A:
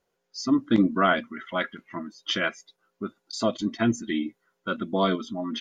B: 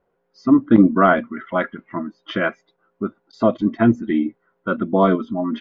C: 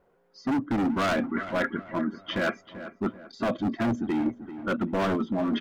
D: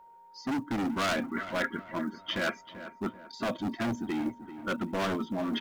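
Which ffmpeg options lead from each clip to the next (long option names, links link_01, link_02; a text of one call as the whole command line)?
ffmpeg -i in.wav -af "lowpass=1400,volume=8.5dB" out.wav
ffmpeg -i in.wav -filter_complex "[0:a]asoftclip=type=hard:threshold=-18.5dB,areverse,acompressor=threshold=-29dB:ratio=6,areverse,asplit=2[link_01][link_02];[link_02]adelay=388,lowpass=frequency=2000:poles=1,volume=-12.5dB,asplit=2[link_03][link_04];[link_04]adelay=388,lowpass=frequency=2000:poles=1,volume=0.46,asplit=2[link_05][link_06];[link_06]adelay=388,lowpass=frequency=2000:poles=1,volume=0.46,asplit=2[link_07][link_08];[link_08]adelay=388,lowpass=frequency=2000:poles=1,volume=0.46,asplit=2[link_09][link_10];[link_10]adelay=388,lowpass=frequency=2000:poles=1,volume=0.46[link_11];[link_01][link_03][link_05][link_07][link_09][link_11]amix=inputs=6:normalize=0,volume=4dB" out.wav
ffmpeg -i in.wav -af "aeval=exprs='val(0)+0.00398*sin(2*PI*930*n/s)':channel_layout=same,highshelf=frequency=2200:gain=9.5,acrusher=bits=9:mode=log:mix=0:aa=0.000001,volume=-5.5dB" out.wav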